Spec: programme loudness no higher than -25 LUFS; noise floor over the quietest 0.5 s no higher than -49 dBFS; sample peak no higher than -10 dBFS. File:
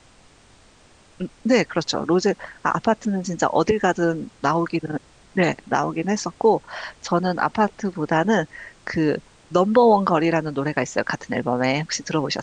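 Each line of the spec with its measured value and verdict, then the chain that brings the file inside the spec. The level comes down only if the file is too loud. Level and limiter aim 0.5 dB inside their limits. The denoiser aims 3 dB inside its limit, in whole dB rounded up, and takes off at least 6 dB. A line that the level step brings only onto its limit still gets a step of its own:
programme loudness -22.0 LUFS: fail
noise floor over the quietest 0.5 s -52 dBFS: pass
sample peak -5.5 dBFS: fail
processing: trim -3.5 dB; peak limiter -10.5 dBFS

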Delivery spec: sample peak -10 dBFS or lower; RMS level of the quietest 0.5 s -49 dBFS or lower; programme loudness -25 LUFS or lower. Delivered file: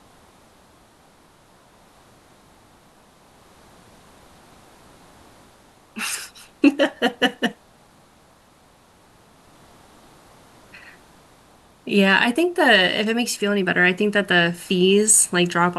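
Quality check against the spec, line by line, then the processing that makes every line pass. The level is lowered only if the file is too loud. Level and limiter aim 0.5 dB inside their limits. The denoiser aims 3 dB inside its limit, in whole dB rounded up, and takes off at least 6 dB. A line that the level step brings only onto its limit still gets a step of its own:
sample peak -4.0 dBFS: fail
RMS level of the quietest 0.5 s -54 dBFS: pass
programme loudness -18.5 LUFS: fail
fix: trim -7 dB

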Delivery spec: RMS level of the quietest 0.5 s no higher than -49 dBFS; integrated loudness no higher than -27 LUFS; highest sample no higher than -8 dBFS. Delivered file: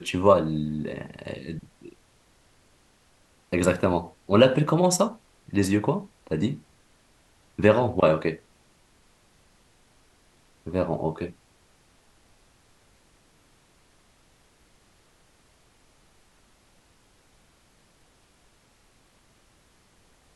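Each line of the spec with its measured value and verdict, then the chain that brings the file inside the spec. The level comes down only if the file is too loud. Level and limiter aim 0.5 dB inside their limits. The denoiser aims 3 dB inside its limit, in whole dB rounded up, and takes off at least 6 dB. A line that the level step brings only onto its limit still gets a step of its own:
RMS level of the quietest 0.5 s -61 dBFS: pass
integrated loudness -24.5 LUFS: fail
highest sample -4.0 dBFS: fail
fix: trim -3 dB; peak limiter -8.5 dBFS

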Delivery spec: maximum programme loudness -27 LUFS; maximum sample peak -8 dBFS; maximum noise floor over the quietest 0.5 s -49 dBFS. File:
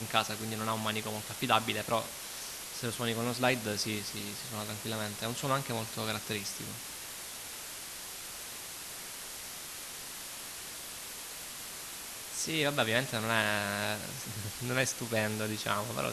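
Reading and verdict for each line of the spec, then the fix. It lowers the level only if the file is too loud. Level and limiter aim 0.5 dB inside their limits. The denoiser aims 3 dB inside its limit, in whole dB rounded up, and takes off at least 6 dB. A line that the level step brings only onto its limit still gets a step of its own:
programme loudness -34.5 LUFS: pass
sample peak -9.5 dBFS: pass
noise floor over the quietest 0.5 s -44 dBFS: fail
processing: noise reduction 8 dB, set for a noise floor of -44 dBFS

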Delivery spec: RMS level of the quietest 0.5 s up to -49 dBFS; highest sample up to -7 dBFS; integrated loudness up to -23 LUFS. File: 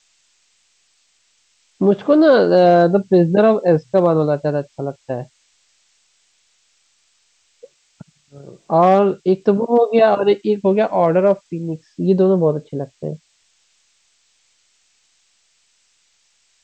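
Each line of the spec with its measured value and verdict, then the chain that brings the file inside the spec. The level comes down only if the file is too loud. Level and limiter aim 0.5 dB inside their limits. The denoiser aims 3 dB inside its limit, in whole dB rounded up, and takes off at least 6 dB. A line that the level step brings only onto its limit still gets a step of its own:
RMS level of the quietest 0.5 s -61 dBFS: pass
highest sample -3.5 dBFS: fail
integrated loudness -16.0 LUFS: fail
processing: trim -7.5 dB

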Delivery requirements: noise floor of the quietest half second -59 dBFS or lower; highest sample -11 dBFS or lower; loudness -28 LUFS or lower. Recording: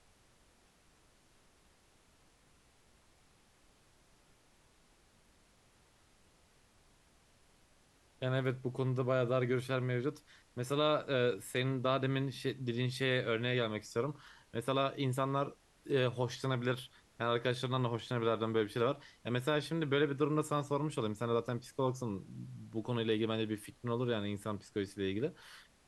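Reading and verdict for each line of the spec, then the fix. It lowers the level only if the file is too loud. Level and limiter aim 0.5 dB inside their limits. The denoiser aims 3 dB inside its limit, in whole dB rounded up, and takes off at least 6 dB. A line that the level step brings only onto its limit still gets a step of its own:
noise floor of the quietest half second -67 dBFS: pass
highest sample -18.5 dBFS: pass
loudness -35.5 LUFS: pass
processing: none needed

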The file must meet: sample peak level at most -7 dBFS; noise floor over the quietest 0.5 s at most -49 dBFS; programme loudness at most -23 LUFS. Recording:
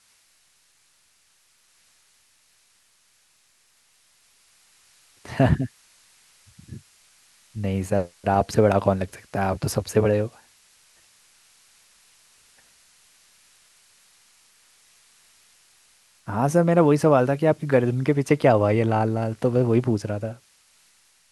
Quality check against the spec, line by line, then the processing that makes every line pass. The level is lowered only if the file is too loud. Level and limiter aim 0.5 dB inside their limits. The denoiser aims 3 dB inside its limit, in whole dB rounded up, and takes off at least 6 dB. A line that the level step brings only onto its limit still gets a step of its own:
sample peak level -4.0 dBFS: fail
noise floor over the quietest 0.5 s -63 dBFS: pass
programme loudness -22.0 LUFS: fail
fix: trim -1.5 dB; peak limiter -7.5 dBFS

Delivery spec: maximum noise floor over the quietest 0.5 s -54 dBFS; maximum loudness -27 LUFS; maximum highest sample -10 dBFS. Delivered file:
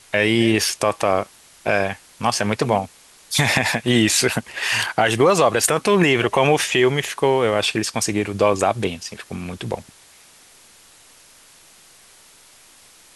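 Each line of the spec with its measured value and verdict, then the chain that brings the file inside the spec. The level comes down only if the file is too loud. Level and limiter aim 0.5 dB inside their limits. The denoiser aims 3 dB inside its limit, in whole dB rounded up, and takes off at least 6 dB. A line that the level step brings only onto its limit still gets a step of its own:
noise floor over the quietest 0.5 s -50 dBFS: fail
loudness -19.0 LUFS: fail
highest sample -5.0 dBFS: fail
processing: trim -8.5 dB

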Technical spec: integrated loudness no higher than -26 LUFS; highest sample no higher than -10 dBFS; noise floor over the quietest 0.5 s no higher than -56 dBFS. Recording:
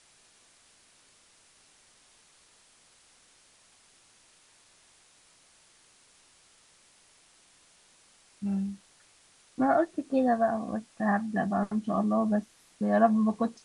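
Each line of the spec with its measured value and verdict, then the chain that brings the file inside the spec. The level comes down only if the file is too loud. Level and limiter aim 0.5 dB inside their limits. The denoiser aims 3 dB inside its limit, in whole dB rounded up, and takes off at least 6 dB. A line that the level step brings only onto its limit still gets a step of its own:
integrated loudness -28.0 LUFS: pass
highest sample -11.0 dBFS: pass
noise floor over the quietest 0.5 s -61 dBFS: pass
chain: none needed

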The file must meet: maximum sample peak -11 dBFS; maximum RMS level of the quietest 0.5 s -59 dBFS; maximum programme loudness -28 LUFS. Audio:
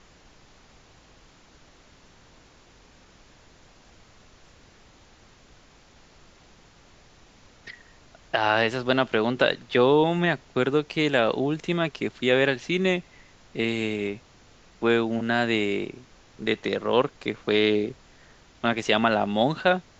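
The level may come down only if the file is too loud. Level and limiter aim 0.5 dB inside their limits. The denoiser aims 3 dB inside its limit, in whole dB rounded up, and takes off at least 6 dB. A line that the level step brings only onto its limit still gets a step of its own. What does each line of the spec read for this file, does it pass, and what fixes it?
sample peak -5.0 dBFS: fail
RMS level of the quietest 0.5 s -54 dBFS: fail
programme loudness -24.5 LUFS: fail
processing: noise reduction 6 dB, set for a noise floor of -54 dBFS; trim -4 dB; peak limiter -11.5 dBFS

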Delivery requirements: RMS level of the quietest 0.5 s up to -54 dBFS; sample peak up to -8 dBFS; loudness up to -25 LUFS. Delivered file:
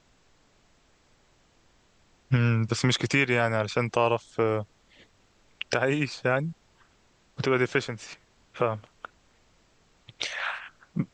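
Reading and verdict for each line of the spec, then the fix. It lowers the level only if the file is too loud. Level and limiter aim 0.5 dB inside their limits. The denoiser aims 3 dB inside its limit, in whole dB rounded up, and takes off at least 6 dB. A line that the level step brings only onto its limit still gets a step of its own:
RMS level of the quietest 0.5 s -63 dBFS: pass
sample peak -9.0 dBFS: pass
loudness -27.0 LUFS: pass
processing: none needed

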